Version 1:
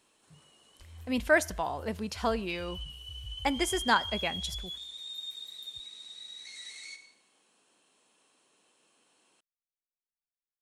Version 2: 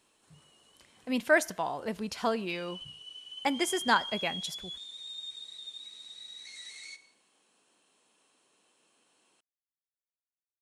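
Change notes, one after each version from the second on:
first sound: muted; second sound: send -6.0 dB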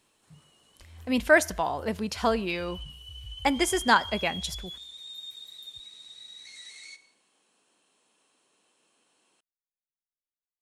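speech +4.5 dB; first sound: unmuted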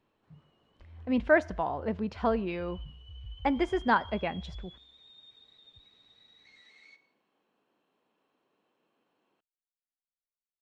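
master: add tape spacing loss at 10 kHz 38 dB

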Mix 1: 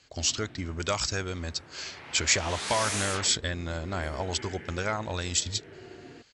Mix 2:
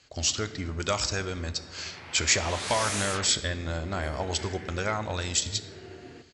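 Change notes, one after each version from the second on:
reverb: on, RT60 1.2 s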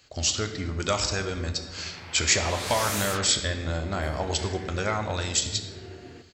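speech: send +6.0 dB; master: remove Chebyshev low-pass 11 kHz, order 10

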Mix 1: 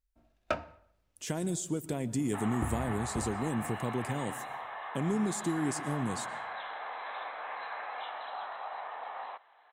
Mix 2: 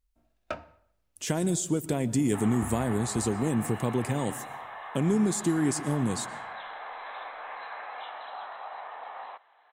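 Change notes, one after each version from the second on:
speech +6.0 dB; first sound -3.5 dB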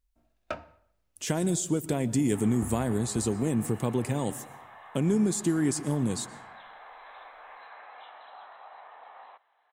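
second sound -8.0 dB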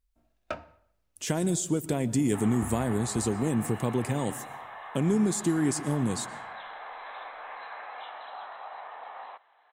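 second sound +6.5 dB

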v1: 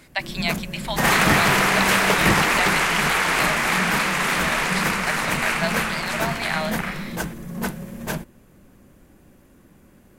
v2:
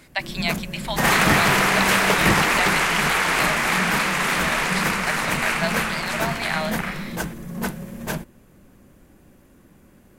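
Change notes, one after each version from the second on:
no change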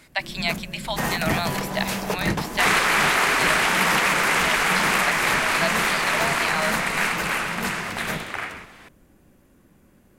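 first sound -4.0 dB; second sound: entry +1.55 s

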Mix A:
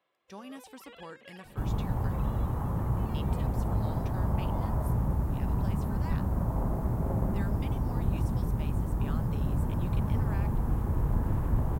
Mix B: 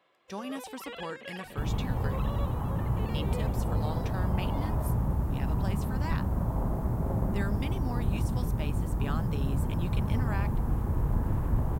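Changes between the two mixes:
speech +7.0 dB; first sound +9.5 dB

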